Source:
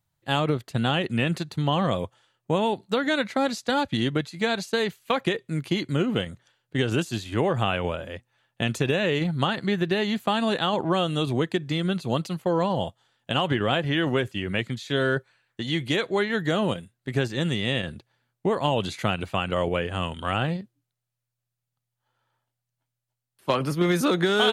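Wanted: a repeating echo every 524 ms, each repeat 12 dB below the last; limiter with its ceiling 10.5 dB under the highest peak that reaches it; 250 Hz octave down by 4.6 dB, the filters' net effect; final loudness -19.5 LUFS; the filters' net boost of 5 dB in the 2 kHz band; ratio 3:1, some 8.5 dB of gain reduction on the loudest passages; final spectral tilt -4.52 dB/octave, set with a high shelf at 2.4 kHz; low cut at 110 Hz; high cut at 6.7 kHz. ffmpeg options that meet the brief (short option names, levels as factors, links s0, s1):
-af "highpass=110,lowpass=6700,equalizer=f=250:t=o:g=-6.5,equalizer=f=2000:t=o:g=4.5,highshelf=f=2400:g=4.5,acompressor=threshold=0.0355:ratio=3,alimiter=limit=0.0841:level=0:latency=1,aecho=1:1:524|1048|1572:0.251|0.0628|0.0157,volume=5.31"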